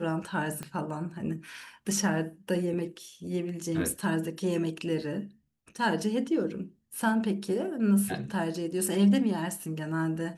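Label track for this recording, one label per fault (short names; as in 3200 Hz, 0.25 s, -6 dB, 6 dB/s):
0.630000	0.630000	pop -22 dBFS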